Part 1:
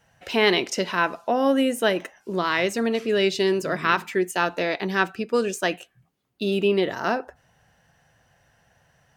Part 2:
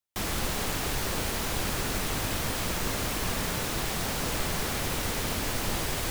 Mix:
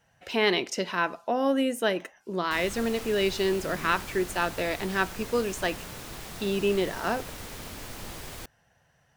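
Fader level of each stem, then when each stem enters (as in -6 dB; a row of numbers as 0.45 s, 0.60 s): -4.5 dB, -10.0 dB; 0.00 s, 2.35 s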